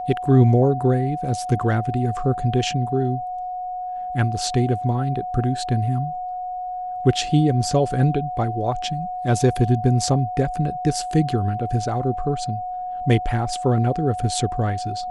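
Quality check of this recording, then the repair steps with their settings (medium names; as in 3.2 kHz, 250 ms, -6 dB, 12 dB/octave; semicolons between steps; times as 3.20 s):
whine 730 Hz -26 dBFS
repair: band-stop 730 Hz, Q 30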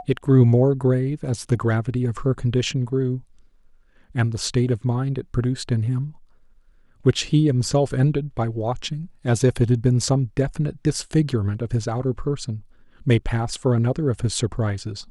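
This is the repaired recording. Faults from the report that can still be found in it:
nothing left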